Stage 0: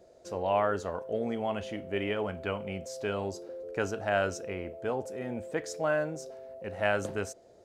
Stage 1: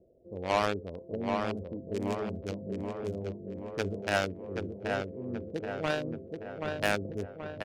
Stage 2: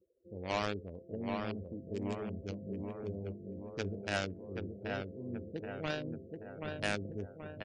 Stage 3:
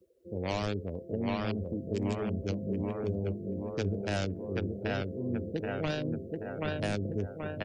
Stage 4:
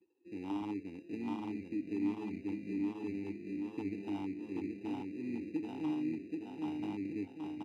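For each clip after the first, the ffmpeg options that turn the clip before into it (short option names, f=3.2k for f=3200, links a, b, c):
-filter_complex "[0:a]acrossover=split=490[a][b];[b]acrusher=bits=3:mix=0:aa=0.5[c];[a][c]amix=inputs=2:normalize=0,asplit=2[d][e];[e]adelay=779,lowpass=f=2.6k:p=1,volume=-4dB,asplit=2[f][g];[g]adelay=779,lowpass=f=2.6k:p=1,volume=0.53,asplit=2[h][i];[i]adelay=779,lowpass=f=2.6k:p=1,volume=0.53,asplit=2[j][k];[k]adelay=779,lowpass=f=2.6k:p=1,volume=0.53,asplit=2[l][m];[m]adelay=779,lowpass=f=2.6k:p=1,volume=0.53,asplit=2[n][o];[o]adelay=779,lowpass=f=2.6k:p=1,volume=0.53,asplit=2[p][q];[q]adelay=779,lowpass=f=2.6k:p=1,volume=0.53[r];[d][f][h][j][l][n][p][r]amix=inputs=8:normalize=0"
-af "lowpass=f=10k:w=0.5412,lowpass=f=10k:w=1.3066,afftdn=nr=24:nf=-52,equalizer=f=840:t=o:w=2.4:g=-6,volume=-2.5dB"
-filter_complex "[0:a]acrossover=split=740[a][b];[b]alimiter=level_in=8dB:limit=-24dB:level=0:latency=1:release=95,volume=-8dB[c];[a][c]amix=inputs=2:normalize=0,acrossover=split=160|3000[d][e][f];[e]acompressor=threshold=-39dB:ratio=6[g];[d][g][f]amix=inputs=3:normalize=0,volume=9dB"
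-filter_complex "[0:a]asuperstop=centerf=5000:order=4:qfactor=6.2,acrusher=samples=20:mix=1:aa=0.000001,asplit=3[a][b][c];[a]bandpass=f=300:t=q:w=8,volume=0dB[d];[b]bandpass=f=870:t=q:w=8,volume=-6dB[e];[c]bandpass=f=2.24k:t=q:w=8,volume=-9dB[f];[d][e][f]amix=inputs=3:normalize=0,volume=5.5dB"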